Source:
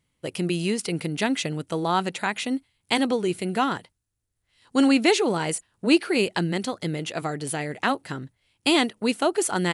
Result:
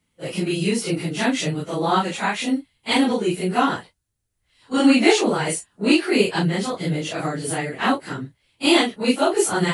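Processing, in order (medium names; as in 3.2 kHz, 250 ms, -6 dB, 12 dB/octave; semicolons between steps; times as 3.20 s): phase randomisation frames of 100 ms; trim +3.5 dB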